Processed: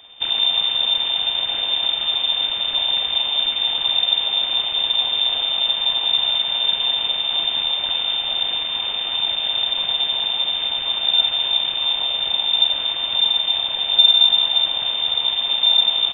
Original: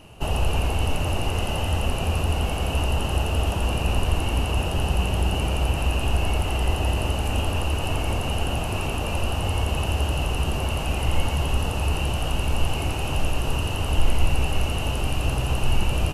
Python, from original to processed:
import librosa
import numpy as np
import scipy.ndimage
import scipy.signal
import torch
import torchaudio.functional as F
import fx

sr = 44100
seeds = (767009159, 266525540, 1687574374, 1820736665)

y = np.abs(x)
y = fx.freq_invert(y, sr, carrier_hz=3600)